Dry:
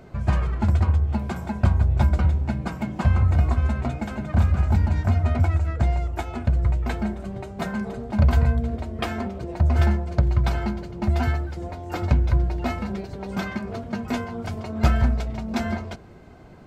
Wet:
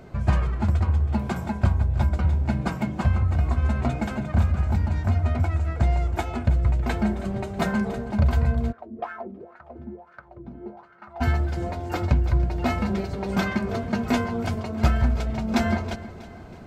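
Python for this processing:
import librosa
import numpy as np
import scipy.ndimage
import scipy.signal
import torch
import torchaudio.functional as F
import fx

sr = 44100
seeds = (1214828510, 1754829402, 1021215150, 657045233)

y = fx.rider(x, sr, range_db=4, speed_s=0.5)
y = fx.echo_feedback(y, sr, ms=321, feedback_pct=43, wet_db=-16.0)
y = fx.wah_lfo(y, sr, hz=fx.line((8.71, 3.0), (11.2, 0.9)), low_hz=240.0, high_hz=1500.0, q=5.0, at=(8.71, 11.2), fade=0.02)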